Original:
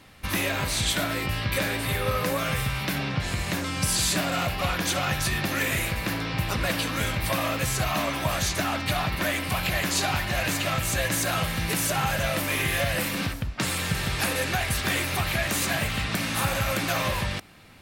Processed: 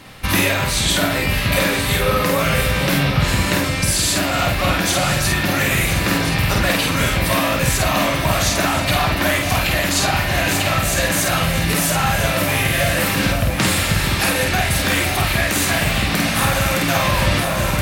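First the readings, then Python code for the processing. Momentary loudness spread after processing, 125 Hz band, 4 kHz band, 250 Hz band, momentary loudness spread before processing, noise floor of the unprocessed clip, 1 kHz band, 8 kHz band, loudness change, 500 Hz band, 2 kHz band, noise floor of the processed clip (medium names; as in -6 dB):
1 LU, +9.0 dB, +8.5 dB, +9.5 dB, 4 LU, -32 dBFS, +8.5 dB, +8.0 dB, +8.5 dB, +9.5 dB, +8.5 dB, -21 dBFS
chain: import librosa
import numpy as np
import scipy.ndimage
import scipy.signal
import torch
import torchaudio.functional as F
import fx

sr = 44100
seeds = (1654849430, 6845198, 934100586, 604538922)

p1 = fx.doubler(x, sr, ms=49.0, db=-3.0)
p2 = p1 + fx.echo_alternate(p1, sr, ms=512, hz=890.0, feedback_pct=61, wet_db=-6.5, dry=0)
p3 = fx.rider(p2, sr, range_db=10, speed_s=0.5)
y = F.gain(torch.from_numpy(p3), 6.5).numpy()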